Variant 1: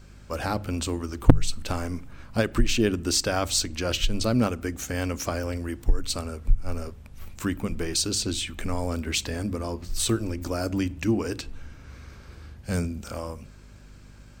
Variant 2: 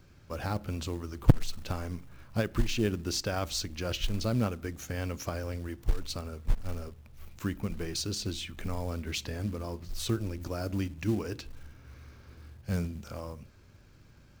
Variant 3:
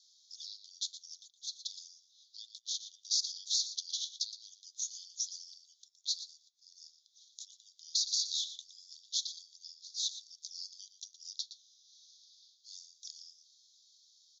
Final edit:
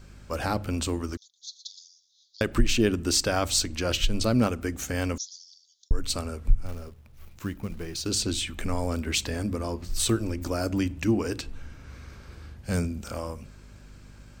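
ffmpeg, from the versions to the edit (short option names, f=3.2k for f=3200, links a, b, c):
-filter_complex "[2:a]asplit=2[a][b];[0:a]asplit=4[c][d][e][f];[c]atrim=end=1.172[g];[a]atrim=start=1.168:end=2.412[h];[d]atrim=start=2.408:end=5.182[i];[b]atrim=start=5.178:end=5.912[j];[e]atrim=start=5.908:end=6.662[k];[1:a]atrim=start=6.658:end=8.062[l];[f]atrim=start=8.058[m];[g][h]acrossfade=d=0.004:c1=hsin:c2=hsin[n];[n][i]acrossfade=d=0.004:c1=hsin:c2=hsin[o];[o][j]acrossfade=d=0.004:c1=hsin:c2=hsin[p];[p][k]acrossfade=d=0.004:c1=hsin:c2=hsin[q];[q][l]acrossfade=d=0.004:c1=hsin:c2=hsin[r];[r][m]acrossfade=d=0.004:c1=hsin:c2=hsin"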